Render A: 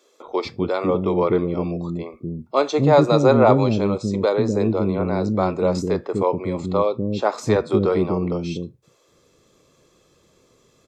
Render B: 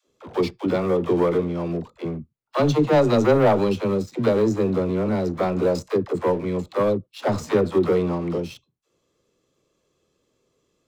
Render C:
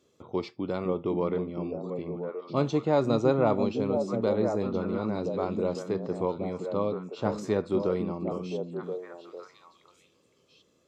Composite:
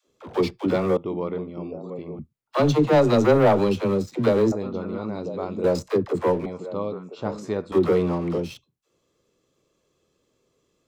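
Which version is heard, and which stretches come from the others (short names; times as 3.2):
B
0.97–2.19 from C
4.52–5.64 from C
6.46–7.72 from C
not used: A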